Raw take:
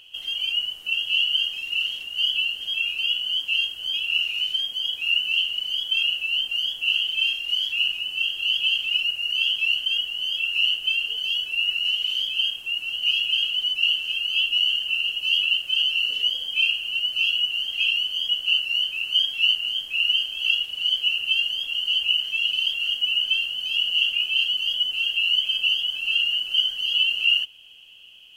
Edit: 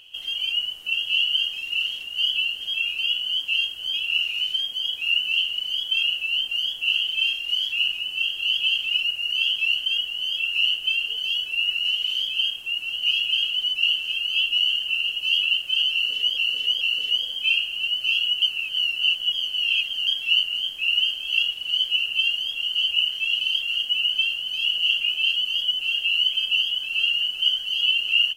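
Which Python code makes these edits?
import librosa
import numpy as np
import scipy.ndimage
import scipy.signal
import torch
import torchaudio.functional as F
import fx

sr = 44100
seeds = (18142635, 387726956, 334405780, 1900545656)

y = fx.edit(x, sr, fx.repeat(start_s=15.93, length_s=0.44, count=3),
    fx.reverse_span(start_s=17.54, length_s=1.65), tone=tone)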